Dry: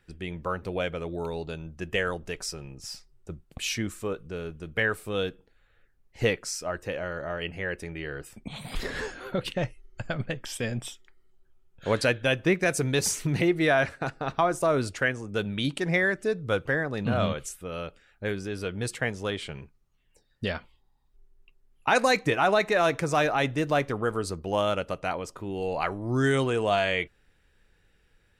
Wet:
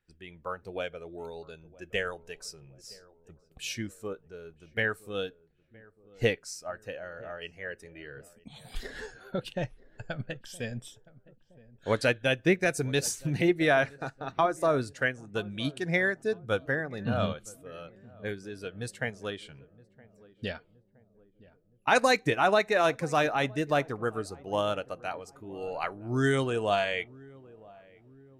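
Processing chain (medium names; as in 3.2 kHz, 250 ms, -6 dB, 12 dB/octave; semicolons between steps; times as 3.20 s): spectral noise reduction 7 dB; filtered feedback delay 968 ms, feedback 58%, low-pass 830 Hz, level -17 dB; upward expansion 1.5:1, over -35 dBFS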